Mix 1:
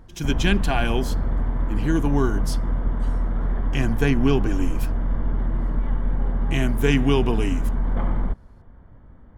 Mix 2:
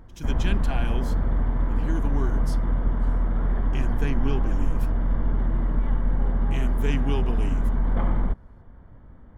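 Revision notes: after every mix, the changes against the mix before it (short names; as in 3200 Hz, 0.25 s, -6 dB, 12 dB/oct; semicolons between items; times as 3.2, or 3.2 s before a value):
speech -10.0 dB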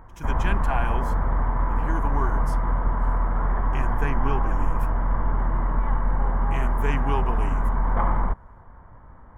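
master: add graphic EQ 250/1000/2000/4000 Hz -4/+12/+4/-10 dB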